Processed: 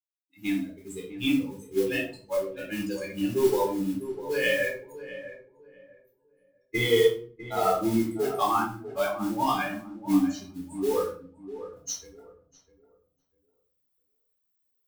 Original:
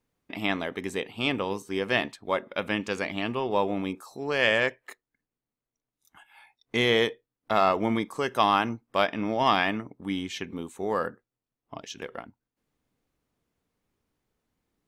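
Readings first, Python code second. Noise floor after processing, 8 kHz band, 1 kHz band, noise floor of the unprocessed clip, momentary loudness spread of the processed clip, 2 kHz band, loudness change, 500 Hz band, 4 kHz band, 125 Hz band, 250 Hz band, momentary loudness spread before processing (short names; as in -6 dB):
-76 dBFS, +8.0 dB, -3.0 dB, under -85 dBFS, 15 LU, -4.0 dB, -0.5 dB, +1.5 dB, -4.5 dB, -0.5 dB, +3.0 dB, 13 LU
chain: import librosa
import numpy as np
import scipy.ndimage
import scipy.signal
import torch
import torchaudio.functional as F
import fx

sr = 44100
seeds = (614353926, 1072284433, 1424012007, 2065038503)

p1 = fx.bin_expand(x, sr, power=3.0)
p2 = fx.recorder_agc(p1, sr, target_db=-21.5, rise_db_per_s=8.5, max_gain_db=30)
p3 = fx.dynamic_eq(p2, sr, hz=340.0, q=1.5, threshold_db=-43.0, ratio=4.0, max_db=5)
p4 = fx.mod_noise(p3, sr, seeds[0], snr_db=16)
p5 = p4 + fx.echo_filtered(p4, sr, ms=650, feedback_pct=26, hz=1300.0, wet_db=-12.0, dry=0)
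p6 = fx.room_shoebox(p5, sr, seeds[1], volume_m3=430.0, walls='furnished', distance_m=4.0)
y = F.gain(torch.from_numpy(p6), -4.5).numpy()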